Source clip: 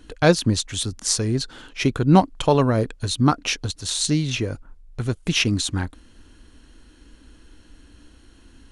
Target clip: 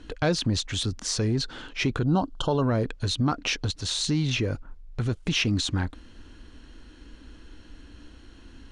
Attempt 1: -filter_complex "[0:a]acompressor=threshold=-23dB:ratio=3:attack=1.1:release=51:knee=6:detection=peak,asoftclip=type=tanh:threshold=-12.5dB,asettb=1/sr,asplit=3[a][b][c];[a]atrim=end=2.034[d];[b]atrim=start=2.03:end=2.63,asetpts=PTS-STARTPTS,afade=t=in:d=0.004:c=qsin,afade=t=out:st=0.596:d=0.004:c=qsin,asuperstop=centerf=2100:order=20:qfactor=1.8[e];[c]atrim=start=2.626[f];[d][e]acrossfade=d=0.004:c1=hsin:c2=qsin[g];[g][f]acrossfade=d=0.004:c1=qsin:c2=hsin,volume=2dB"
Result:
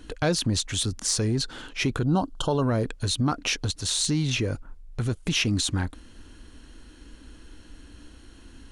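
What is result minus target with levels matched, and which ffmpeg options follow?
8000 Hz band +4.5 dB
-filter_complex "[0:a]acompressor=threshold=-23dB:ratio=3:attack=1.1:release=51:knee=6:detection=peak,lowpass=5.7k,asoftclip=type=tanh:threshold=-12.5dB,asettb=1/sr,asplit=3[a][b][c];[a]atrim=end=2.034[d];[b]atrim=start=2.03:end=2.63,asetpts=PTS-STARTPTS,afade=t=in:d=0.004:c=qsin,afade=t=out:st=0.596:d=0.004:c=qsin,asuperstop=centerf=2100:order=20:qfactor=1.8[e];[c]atrim=start=2.626[f];[d][e]acrossfade=d=0.004:c1=hsin:c2=qsin[g];[g][f]acrossfade=d=0.004:c1=qsin:c2=hsin,volume=2dB"

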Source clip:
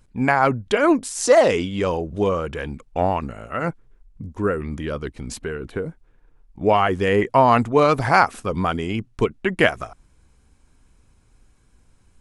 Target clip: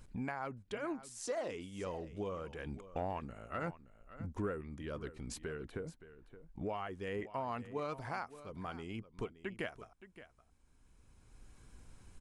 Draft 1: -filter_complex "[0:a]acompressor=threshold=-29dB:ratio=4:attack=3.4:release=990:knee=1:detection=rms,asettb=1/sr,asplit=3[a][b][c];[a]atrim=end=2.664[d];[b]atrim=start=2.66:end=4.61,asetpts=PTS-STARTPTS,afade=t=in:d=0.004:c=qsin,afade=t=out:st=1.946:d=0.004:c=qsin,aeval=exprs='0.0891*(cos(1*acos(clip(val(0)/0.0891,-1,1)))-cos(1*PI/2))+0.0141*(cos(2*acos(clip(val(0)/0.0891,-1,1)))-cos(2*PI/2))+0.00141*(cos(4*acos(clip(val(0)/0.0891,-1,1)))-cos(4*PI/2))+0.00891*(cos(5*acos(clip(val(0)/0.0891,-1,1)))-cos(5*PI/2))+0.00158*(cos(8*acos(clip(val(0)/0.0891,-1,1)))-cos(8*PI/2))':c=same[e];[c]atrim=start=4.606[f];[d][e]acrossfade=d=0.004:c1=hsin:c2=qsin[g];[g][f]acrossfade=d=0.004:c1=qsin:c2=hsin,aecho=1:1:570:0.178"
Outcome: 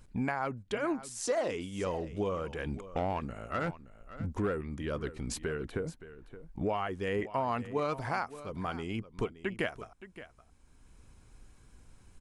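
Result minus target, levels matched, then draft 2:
compressor: peak gain reduction -7.5 dB
-filter_complex "[0:a]acompressor=threshold=-39dB:ratio=4:attack=3.4:release=990:knee=1:detection=rms,asettb=1/sr,asplit=3[a][b][c];[a]atrim=end=2.664[d];[b]atrim=start=2.66:end=4.61,asetpts=PTS-STARTPTS,afade=t=in:d=0.004:c=qsin,afade=t=out:st=1.946:d=0.004:c=qsin,aeval=exprs='0.0891*(cos(1*acos(clip(val(0)/0.0891,-1,1)))-cos(1*PI/2))+0.0141*(cos(2*acos(clip(val(0)/0.0891,-1,1)))-cos(2*PI/2))+0.00141*(cos(4*acos(clip(val(0)/0.0891,-1,1)))-cos(4*PI/2))+0.00891*(cos(5*acos(clip(val(0)/0.0891,-1,1)))-cos(5*PI/2))+0.00158*(cos(8*acos(clip(val(0)/0.0891,-1,1)))-cos(8*PI/2))':c=same[e];[c]atrim=start=4.606[f];[d][e]acrossfade=d=0.004:c1=hsin:c2=qsin[g];[g][f]acrossfade=d=0.004:c1=qsin:c2=hsin,aecho=1:1:570:0.178"

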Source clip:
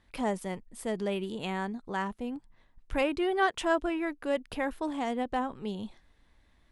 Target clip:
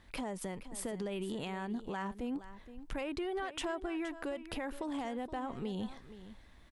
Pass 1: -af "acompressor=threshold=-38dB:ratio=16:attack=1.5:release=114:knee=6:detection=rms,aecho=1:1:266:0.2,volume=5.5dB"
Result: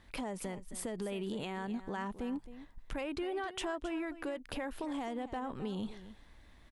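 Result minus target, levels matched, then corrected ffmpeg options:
echo 0.204 s early
-af "acompressor=threshold=-38dB:ratio=16:attack=1.5:release=114:knee=6:detection=rms,aecho=1:1:470:0.2,volume=5.5dB"

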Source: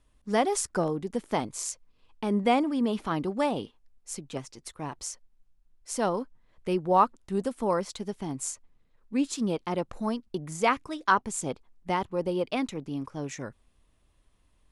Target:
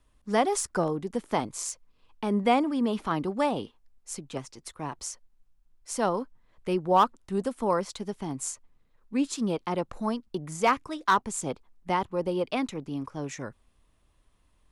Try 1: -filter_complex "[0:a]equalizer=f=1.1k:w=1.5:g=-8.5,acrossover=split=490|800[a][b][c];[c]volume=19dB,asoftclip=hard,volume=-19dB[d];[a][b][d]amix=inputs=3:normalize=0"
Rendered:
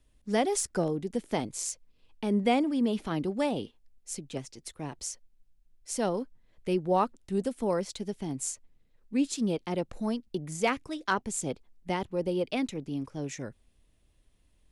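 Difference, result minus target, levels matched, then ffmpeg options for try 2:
1000 Hz band -4.0 dB
-filter_complex "[0:a]equalizer=f=1.1k:w=1.5:g=2.5,acrossover=split=490|800[a][b][c];[c]volume=19dB,asoftclip=hard,volume=-19dB[d];[a][b][d]amix=inputs=3:normalize=0"

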